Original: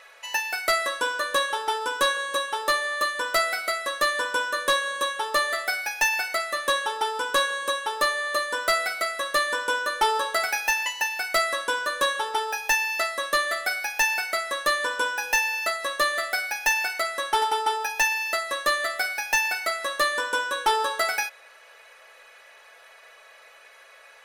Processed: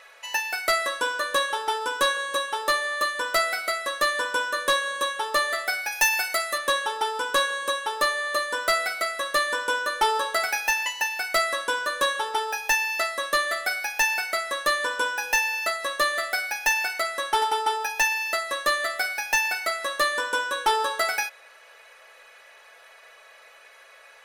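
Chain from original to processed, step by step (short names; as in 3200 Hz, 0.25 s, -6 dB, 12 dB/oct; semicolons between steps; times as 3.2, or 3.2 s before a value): 5.92–6.58 high shelf 6500 Hz +8.5 dB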